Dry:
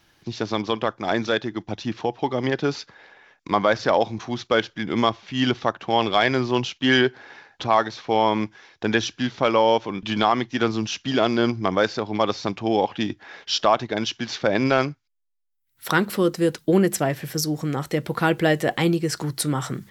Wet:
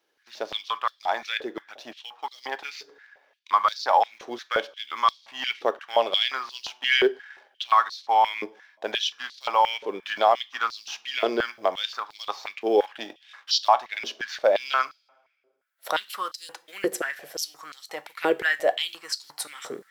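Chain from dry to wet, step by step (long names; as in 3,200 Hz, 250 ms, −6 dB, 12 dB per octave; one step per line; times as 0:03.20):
mu-law and A-law mismatch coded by A
coupled-rooms reverb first 0.3 s, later 1.5 s, from −20 dB, DRR 14 dB
high-pass on a step sequencer 5.7 Hz 430–4,300 Hz
level −6 dB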